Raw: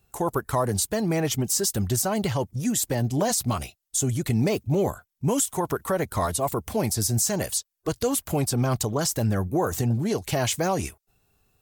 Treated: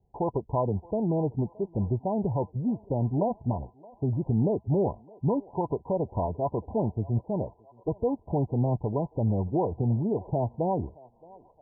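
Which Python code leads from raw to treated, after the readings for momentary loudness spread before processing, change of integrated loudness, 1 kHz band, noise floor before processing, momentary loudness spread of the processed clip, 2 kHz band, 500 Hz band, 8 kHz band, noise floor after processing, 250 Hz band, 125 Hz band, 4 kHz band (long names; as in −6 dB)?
5 LU, −4.0 dB, −3.5 dB, −76 dBFS, 5 LU, below −40 dB, −2.0 dB, below −40 dB, −61 dBFS, −2.0 dB, −1.5 dB, below −40 dB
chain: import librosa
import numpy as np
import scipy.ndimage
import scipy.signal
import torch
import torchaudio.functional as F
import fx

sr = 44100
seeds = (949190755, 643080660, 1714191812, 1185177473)

y = scipy.signal.sosfilt(scipy.signal.cheby1(10, 1.0, 1000.0, 'lowpass', fs=sr, output='sos'), x)
y = fx.echo_thinned(y, sr, ms=621, feedback_pct=80, hz=740.0, wet_db=-18.5)
y = y * librosa.db_to_amplitude(-1.5)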